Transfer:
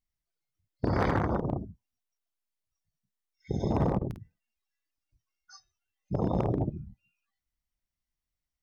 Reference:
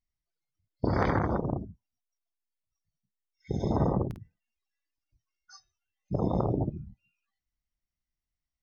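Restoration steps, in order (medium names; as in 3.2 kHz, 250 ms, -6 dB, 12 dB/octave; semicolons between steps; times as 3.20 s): clip repair -19 dBFS; interpolate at 3.99 s, 24 ms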